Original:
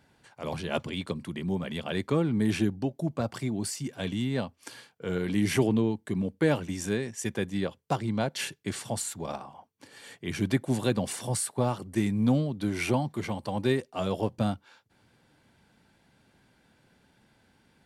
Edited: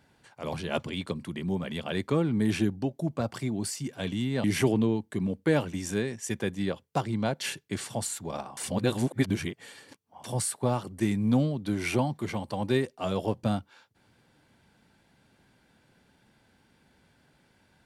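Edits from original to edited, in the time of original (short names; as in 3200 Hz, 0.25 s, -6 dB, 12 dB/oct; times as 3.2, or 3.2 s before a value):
4.44–5.39 cut
9.52–11.19 reverse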